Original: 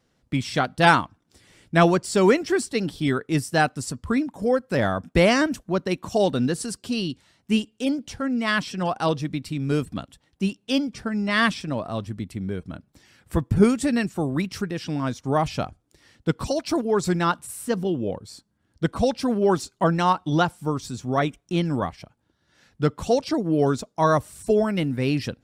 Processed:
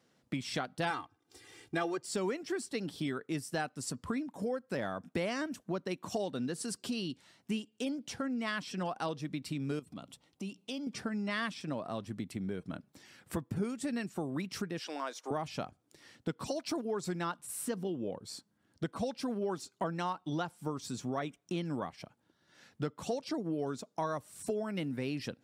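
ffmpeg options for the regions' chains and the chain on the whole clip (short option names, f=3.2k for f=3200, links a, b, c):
-filter_complex "[0:a]asettb=1/sr,asplit=3[a][b][c];[a]atrim=end=0.904[d];[b]atrim=start=0.9:end=2.03,asetpts=PTS-STARTPTS,afade=t=in:d=0.004:c=qsin,afade=t=out:st=1.126:d=0.004:c=qsin,aeval=exprs='if(lt(val(0),0),0.708*val(0),val(0))':c=same,aecho=1:1:2.5:0.89,atrim=end_sample=49833[e];[c]atrim=start=2.026[f];[d][e]acrossfade=d=0.004:c1=hsin:c2=qsin[g];[g][f]acrossfade=d=0.004:c1=qsin:c2=hsin,asettb=1/sr,asplit=3[h][i][j];[h]atrim=end=9.794[k];[i]atrim=start=9.79:end=10.87,asetpts=PTS-STARTPTS,afade=t=in:d=0.004:c=qsin,afade=t=out:st=1.076:d=0.004:c=qsin,equalizer=f=1.7k:w=7.6:g=-14,acompressor=threshold=-37dB:ratio=3:attack=3.2:release=140:knee=1:detection=peak,bandreject=f=60:t=h:w=6,bandreject=f=120:t=h:w=6,bandreject=f=180:t=h:w=6[l];[j]atrim=start=10.866[m];[k][l]acrossfade=d=0.004:c1=hsin:c2=qsin[n];[n][m]acrossfade=d=0.004:c1=qsin:c2=hsin,asettb=1/sr,asplit=3[o][p][q];[o]atrim=end=14.794[r];[p]atrim=start=14.79:end=15.31,asetpts=PTS-STARTPTS,afade=t=in:d=0.004:c=qsin,afade=t=out:st=0.516:d=0.004:c=qsin,highpass=f=420:w=0.5412,highpass=f=420:w=1.3066,acompressor=mode=upward:threshold=-53dB:ratio=2.5:attack=3.2:release=140:knee=2.83:detection=peak[s];[q]atrim=start=15.306[t];[r][s]acrossfade=d=0.004:c1=hsin:c2=qsin[u];[u][t]acrossfade=d=0.004:c1=qsin:c2=hsin,highpass=150,acompressor=threshold=-33dB:ratio=4,volume=-1.5dB"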